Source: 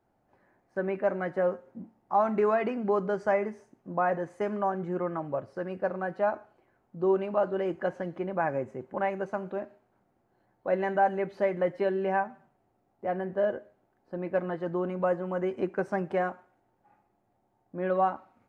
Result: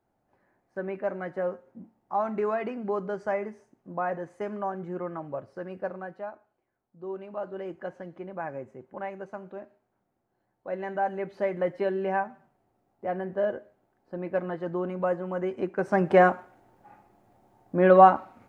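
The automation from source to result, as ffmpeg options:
-af "volume=21dB,afade=t=out:st=5.84:d=0.49:silence=0.316228,afade=t=in:st=6.98:d=0.63:silence=0.473151,afade=t=in:st=10.68:d=0.98:silence=0.473151,afade=t=in:st=15.76:d=0.47:silence=0.281838"

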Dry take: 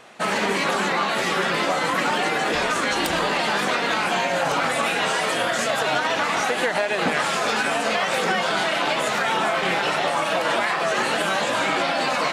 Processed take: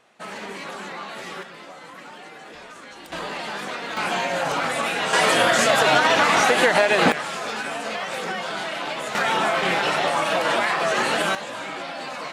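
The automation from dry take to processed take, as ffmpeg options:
-af "asetnsamples=n=441:p=0,asendcmd='1.43 volume volume -19dB;3.12 volume volume -8.5dB;3.97 volume volume -2dB;5.13 volume volume 5dB;7.12 volume volume -6.5dB;9.15 volume volume 0.5dB;11.35 volume volume -10dB',volume=-12dB"

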